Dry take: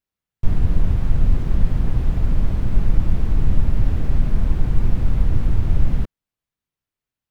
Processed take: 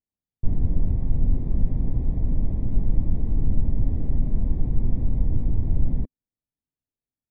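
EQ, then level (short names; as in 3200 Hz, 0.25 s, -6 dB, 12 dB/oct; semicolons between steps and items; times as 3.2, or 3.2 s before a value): running mean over 31 samples; bell 260 Hz +5.5 dB 0.38 oct; -4.5 dB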